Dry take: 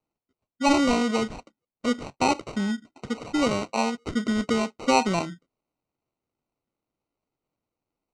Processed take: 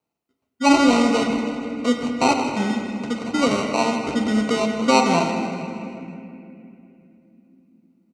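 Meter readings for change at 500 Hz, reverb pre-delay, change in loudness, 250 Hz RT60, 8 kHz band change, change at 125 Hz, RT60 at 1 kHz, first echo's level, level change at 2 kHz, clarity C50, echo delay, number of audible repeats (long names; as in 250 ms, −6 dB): +5.5 dB, 4 ms, +5.0 dB, 4.7 s, +4.5 dB, +4.5 dB, 2.4 s, −11.0 dB, +5.5 dB, 3.5 dB, 158 ms, 3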